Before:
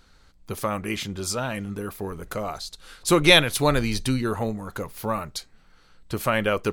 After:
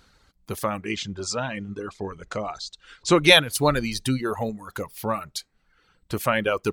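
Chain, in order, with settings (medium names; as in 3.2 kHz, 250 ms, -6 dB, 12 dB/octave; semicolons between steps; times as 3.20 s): high-pass 50 Hz 6 dB/octave; reverb removal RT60 0.98 s; 0.84–3.15 s: steep low-pass 7.6 kHz 36 dB/octave; trim +1 dB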